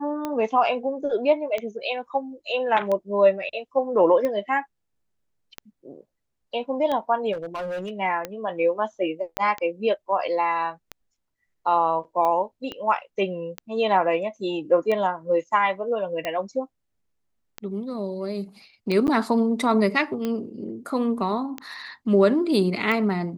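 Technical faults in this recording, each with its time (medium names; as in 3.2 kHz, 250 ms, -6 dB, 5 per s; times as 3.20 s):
tick 45 rpm -15 dBFS
7.32–7.91 s: clipped -27 dBFS
9.37 s: pop -9 dBFS
12.72 s: pop -20 dBFS
19.07–19.08 s: dropout 9.5 ms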